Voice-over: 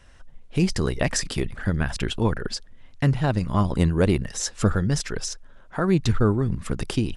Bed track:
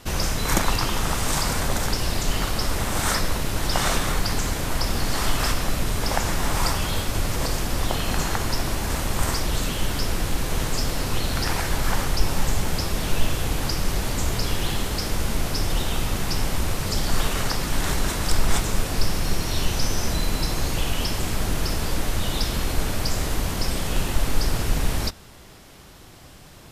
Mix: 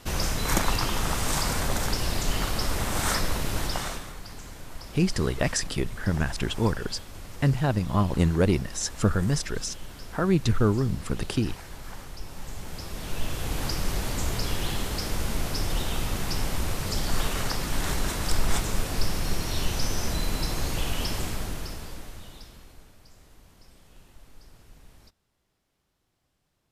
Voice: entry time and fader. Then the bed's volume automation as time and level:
4.40 s, -2.0 dB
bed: 3.60 s -3 dB
4.13 s -17.5 dB
12.28 s -17.5 dB
13.62 s -4 dB
21.19 s -4 dB
22.96 s -29.5 dB

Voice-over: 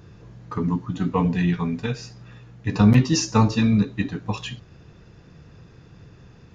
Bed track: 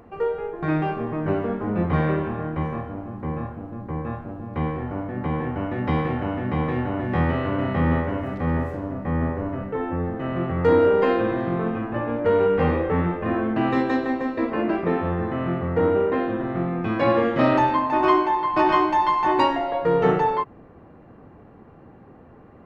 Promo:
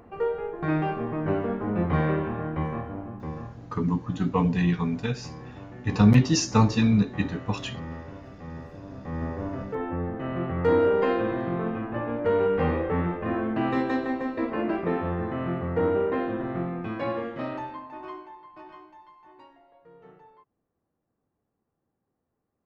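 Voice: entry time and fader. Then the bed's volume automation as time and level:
3.20 s, -2.0 dB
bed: 3.03 s -2.5 dB
3.91 s -16.5 dB
8.58 s -16.5 dB
9.47 s -4 dB
16.55 s -4 dB
19.14 s -33 dB

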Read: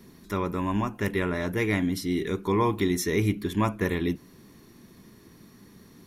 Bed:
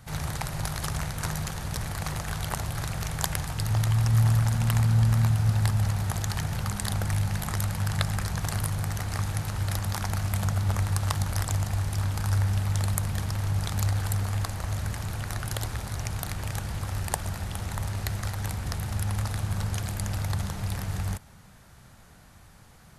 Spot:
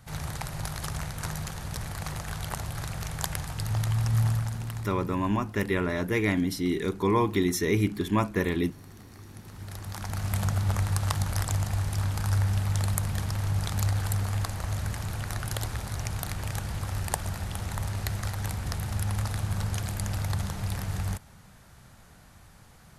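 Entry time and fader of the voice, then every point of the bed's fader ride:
4.55 s, 0.0 dB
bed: 4.25 s -3 dB
5.22 s -20 dB
9.20 s -20 dB
10.34 s -0.5 dB

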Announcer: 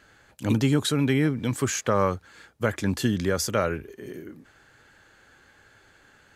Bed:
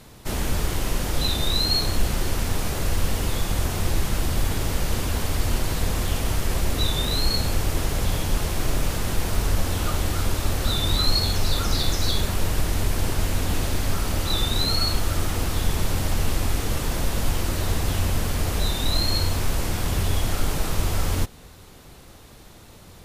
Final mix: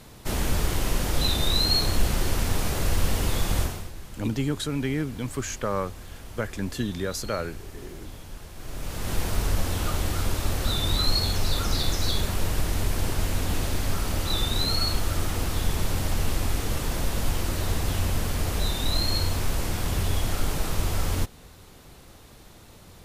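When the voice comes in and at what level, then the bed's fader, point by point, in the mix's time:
3.75 s, -5.0 dB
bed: 3.61 s -0.5 dB
3.92 s -17.5 dB
8.53 s -17.5 dB
9.14 s -2.5 dB

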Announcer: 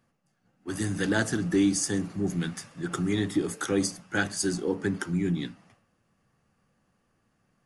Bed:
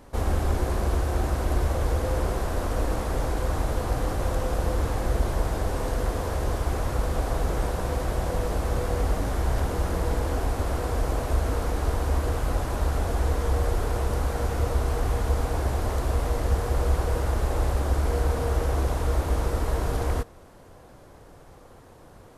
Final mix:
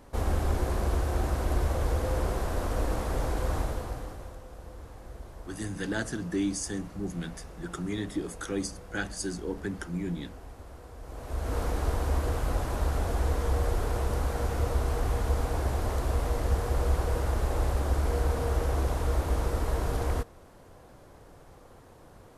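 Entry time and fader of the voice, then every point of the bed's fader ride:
4.80 s, -6.0 dB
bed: 3.58 s -3 dB
4.42 s -19.5 dB
10.99 s -19.5 dB
11.58 s -3 dB

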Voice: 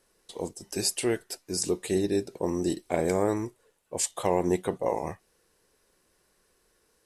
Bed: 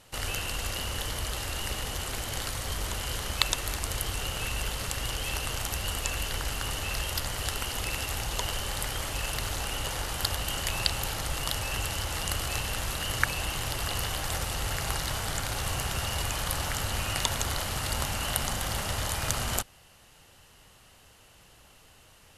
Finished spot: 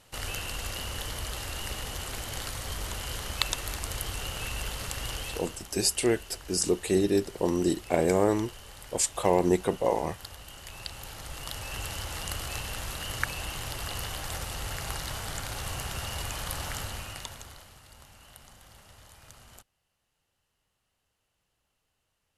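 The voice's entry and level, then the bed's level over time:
5.00 s, +2.0 dB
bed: 5.19 s -2.5 dB
5.67 s -14.5 dB
10.56 s -14.5 dB
11.88 s -4 dB
16.79 s -4 dB
17.83 s -22.5 dB

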